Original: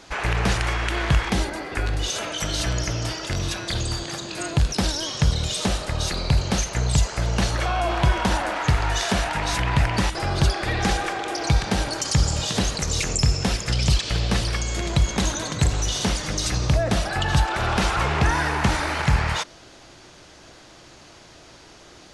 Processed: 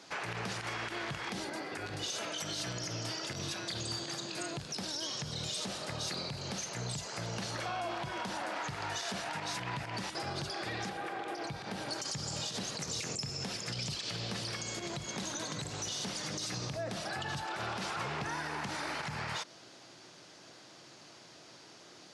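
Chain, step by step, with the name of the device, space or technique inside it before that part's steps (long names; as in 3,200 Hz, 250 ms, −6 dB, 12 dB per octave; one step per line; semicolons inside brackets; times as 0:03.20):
broadcast voice chain (high-pass filter 120 Hz 24 dB per octave; de-essing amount 35%; downward compressor 4 to 1, threshold −26 dBFS, peak gain reduction 9 dB; parametric band 4,900 Hz +4 dB 0.62 octaves; brickwall limiter −19.5 dBFS, peak gain reduction 8 dB)
0:10.88–0:11.88: parametric band 6,200 Hz −15 dB → −5.5 dB 1.4 octaves
level −8 dB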